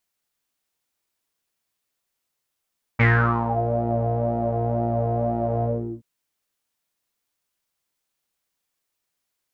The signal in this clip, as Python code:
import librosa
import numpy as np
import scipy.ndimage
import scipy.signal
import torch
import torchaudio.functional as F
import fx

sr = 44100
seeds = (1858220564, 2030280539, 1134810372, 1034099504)

y = fx.sub_patch_pwm(sr, seeds[0], note=46, wave2='saw', interval_st=0, detune_cents=16, level2_db=-9.0, sub_db=-15.0, noise_db=-30.0, kind='lowpass', cutoff_hz=280.0, q=10.0, env_oct=3.0, env_decay_s=0.62, env_sustain_pct=40, attack_ms=15.0, decay_s=0.44, sustain_db=-8.0, release_s=0.38, note_s=2.65, lfo_hz=2.0, width_pct=31, width_swing_pct=10)